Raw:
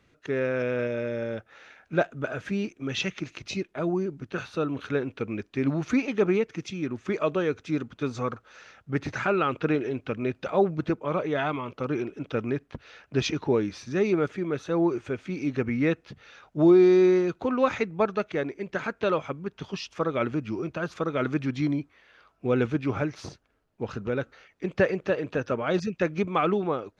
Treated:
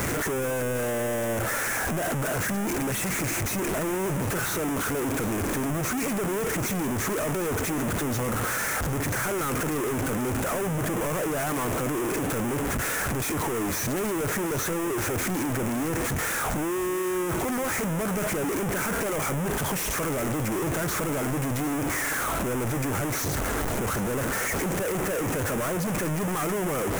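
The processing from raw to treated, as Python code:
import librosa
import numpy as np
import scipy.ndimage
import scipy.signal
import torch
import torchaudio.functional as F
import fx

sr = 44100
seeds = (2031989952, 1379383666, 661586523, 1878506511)

y = np.sign(x) * np.sqrt(np.mean(np.square(x)))
y = fx.band_shelf(y, sr, hz=3600.0, db=-14.5, octaves=1.1)
y = np.clip(10.0 ** (35.0 / 20.0) * y, -1.0, 1.0) / 10.0 ** (35.0 / 20.0)
y = fx.echo_split(y, sr, split_hz=1300.0, low_ms=324, high_ms=756, feedback_pct=52, wet_db=-15.5)
y = y * librosa.db_to_amplitude(8.0)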